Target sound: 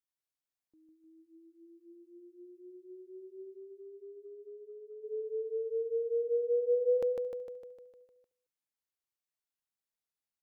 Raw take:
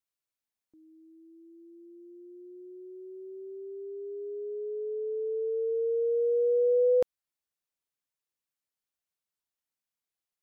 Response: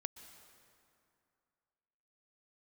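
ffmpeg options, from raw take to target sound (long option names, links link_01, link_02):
-filter_complex "[0:a]asplit=2[link_01][link_02];[link_02]aecho=0:1:152|304|456|608|760|912|1064|1216:0.668|0.381|0.217|0.124|0.0706|0.0402|0.0229|0.0131[link_03];[link_01][link_03]amix=inputs=2:normalize=0,asplit=3[link_04][link_05][link_06];[link_04]afade=type=out:start_time=3.53:duration=0.02[link_07];[link_05]acompressor=threshold=-40dB:ratio=6,afade=type=in:start_time=3.53:duration=0.02,afade=type=out:start_time=5.03:duration=0.02[link_08];[link_06]afade=type=in:start_time=5.03:duration=0.02[link_09];[link_07][link_08][link_09]amix=inputs=3:normalize=0,asplit=2[link_10][link_11];[link_11]aecho=0:1:223:0.075[link_12];[link_10][link_12]amix=inputs=2:normalize=0,volume=-7dB"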